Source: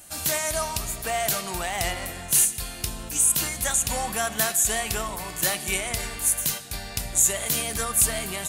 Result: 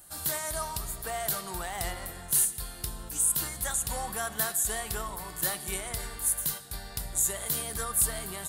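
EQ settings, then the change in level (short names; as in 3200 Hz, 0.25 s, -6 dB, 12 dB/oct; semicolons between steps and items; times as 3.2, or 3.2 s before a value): fifteen-band EQ 100 Hz -4 dB, 250 Hz -7 dB, 630 Hz -5 dB, 2500 Hz -11 dB, 6300 Hz -8 dB; -3.0 dB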